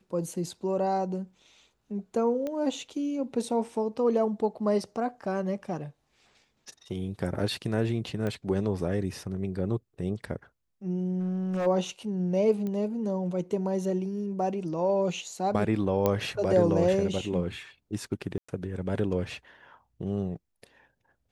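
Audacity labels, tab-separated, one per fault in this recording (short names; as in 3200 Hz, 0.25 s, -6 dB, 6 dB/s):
2.470000	2.470000	pop -21 dBFS
8.270000	8.270000	pop -20 dBFS
11.190000	11.670000	clipped -26 dBFS
12.670000	12.670000	pop -23 dBFS
16.060000	16.060000	pop -12 dBFS
18.380000	18.480000	gap 0.105 s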